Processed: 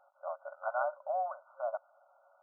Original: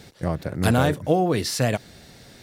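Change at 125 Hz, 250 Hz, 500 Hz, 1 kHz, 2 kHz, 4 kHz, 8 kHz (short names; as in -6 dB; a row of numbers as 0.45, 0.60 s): under -40 dB, under -40 dB, -12.5 dB, -8.0 dB, -14.5 dB, under -40 dB, under -40 dB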